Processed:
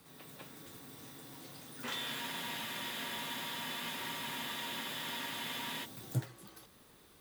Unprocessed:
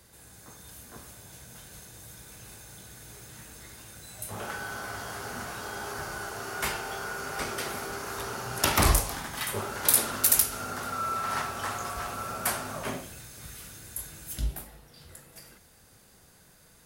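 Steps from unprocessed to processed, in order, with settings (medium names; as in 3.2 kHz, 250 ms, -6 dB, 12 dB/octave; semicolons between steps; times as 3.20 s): speed mistake 33 rpm record played at 78 rpm; spectral freeze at 2.24 s, 3.61 s; trim -2.5 dB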